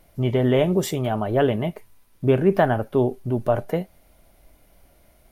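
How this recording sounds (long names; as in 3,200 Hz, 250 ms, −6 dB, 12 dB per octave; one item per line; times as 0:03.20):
background noise floor −58 dBFS
spectral slope −6.0 dB per octave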